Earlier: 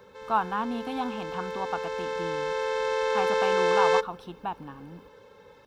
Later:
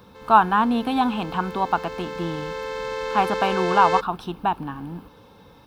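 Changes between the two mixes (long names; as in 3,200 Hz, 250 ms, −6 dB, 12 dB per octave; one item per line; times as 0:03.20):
speech +10.5 dB
reverb: off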